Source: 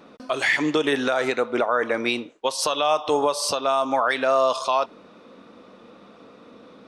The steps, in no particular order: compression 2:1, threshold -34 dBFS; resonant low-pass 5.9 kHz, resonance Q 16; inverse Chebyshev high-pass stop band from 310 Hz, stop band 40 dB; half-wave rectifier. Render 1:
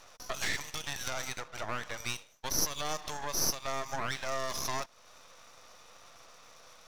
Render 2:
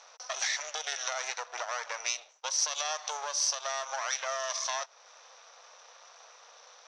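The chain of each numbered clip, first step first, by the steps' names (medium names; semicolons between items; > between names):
resonant low-pass > compression > inverse Chebyshev high-pass > half-wave rectifier; half-wave rectifier > resonant low-pass > compression > inverse Chebyshev high-pass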